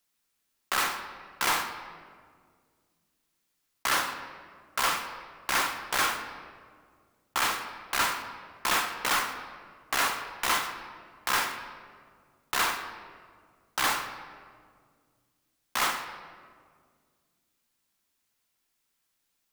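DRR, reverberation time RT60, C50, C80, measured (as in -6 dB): 6.0 dB, 1.9 s, 8.5 dB, 9.5 dB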